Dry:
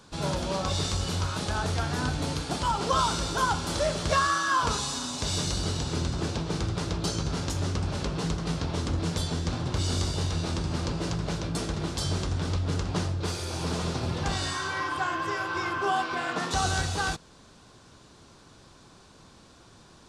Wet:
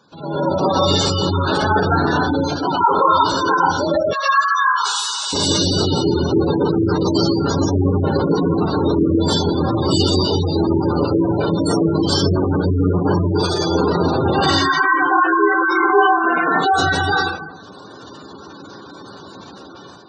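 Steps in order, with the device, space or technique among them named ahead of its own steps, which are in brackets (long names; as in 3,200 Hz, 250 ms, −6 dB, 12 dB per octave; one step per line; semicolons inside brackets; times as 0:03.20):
far laptop microphone (convolution reverb RT60 0.75 s, pre-delay 104 ms, DRR −9 dB; high-pass filter 150 Hz 12 dB per octave; automatic gain control gain up to 9 dB)
0:04.13–0:05.33: high-pass filter 1,000 Hz 12 dB per octave
gate on every frequency bin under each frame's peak −15 dB strong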